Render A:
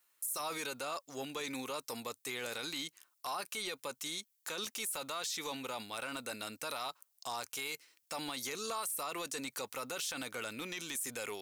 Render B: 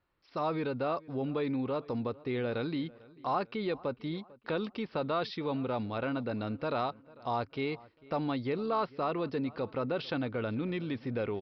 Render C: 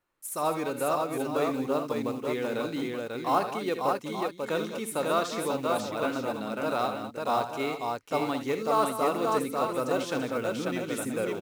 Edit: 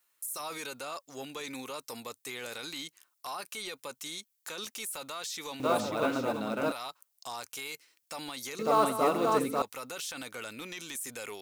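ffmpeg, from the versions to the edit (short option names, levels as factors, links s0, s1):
-filter_complex "[2:a]asplit=2[s0][s1];[0:a]asplit=3[s2][s3][s4];[s2]atrim=end=5.602[s5];[s0]atrim=start=5.598:end=6.722[s6];[s3]atrim=start=6.718:end=8.592[s7];[s1]atrim=start=8.588:end=9.622[s8];[s4]atrim=start=9.618[s9];[s5][s6]acrossfade=d=0.004:c1=hsin:c2=hsin[s10];[s10][s7]acrossfade=d=0.004:c1=hsin:c2=hsin[s11];[s11][s8]acrossfade=d=0.004:c1=hsin:c2=hsin[s12];[s12][s9]acrossfade=d=0.004:c1=hsin:c2=hsin"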